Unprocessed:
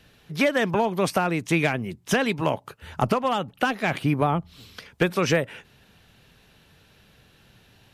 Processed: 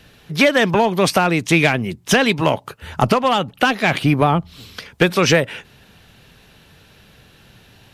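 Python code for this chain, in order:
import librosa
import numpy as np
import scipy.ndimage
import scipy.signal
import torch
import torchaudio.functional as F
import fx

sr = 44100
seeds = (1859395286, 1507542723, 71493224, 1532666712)

p1 = fx.dynamic_eq(x, sr, hz=4000.0, q=0.86, threshold_db=-43.0, ratio=4.0, max_db=5)
p2 = 10.0 ** (-19.5 / 20.0) * np.tanh(p1 / 10.0 ** (-19.5 / 20.0))
p3 = p1 + F.gain(torch.from_numpy(p2), -9.0).numpy()
y = F.gain(torch.from_numpy(p3), 5.0).numpy()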